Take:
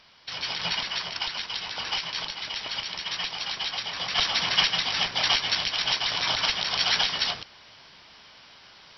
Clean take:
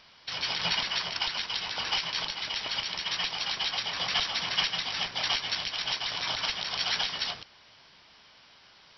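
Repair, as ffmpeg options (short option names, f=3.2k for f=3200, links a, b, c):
-af "agate=range=-21dB:threshold=-43dB,asetnsamples=n=441:p=0,asendcmd='4.18 volume volume -5.5dB',volume=0dB"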